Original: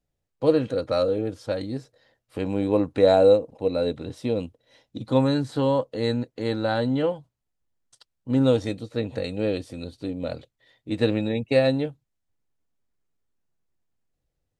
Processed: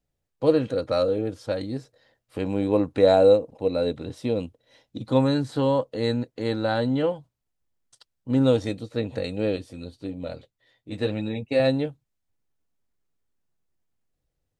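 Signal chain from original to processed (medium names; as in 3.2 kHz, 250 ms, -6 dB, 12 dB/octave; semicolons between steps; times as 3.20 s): 9.56–11.60 s: flange 1.7 Hz, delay 9.8 ms, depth 1.5 ms, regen -28%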